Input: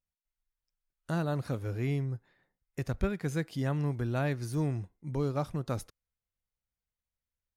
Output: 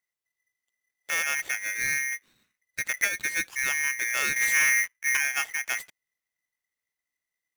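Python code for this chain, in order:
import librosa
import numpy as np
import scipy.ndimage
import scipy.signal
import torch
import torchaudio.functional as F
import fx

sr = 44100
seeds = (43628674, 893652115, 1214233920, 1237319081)

y = fx.leveller(x, sr, passes=3, at=(4.36, 5.17))
y = y * np.sign(np.sin(2.0 * np.pi * 2000.0 * np.arange(len(y)) / sr))
y = y * 10.0 ** (3.0 / 20.0)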